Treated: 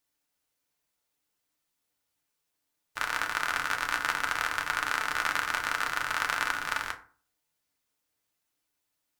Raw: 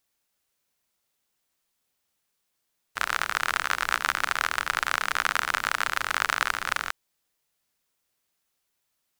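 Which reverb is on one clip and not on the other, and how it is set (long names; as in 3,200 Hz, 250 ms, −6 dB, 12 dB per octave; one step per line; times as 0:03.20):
feedback delay network reverb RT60 0.42 s, low-frequency decay 1.2×, high-frequency decay 0.55×, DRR 2.5 dB
level −5 dB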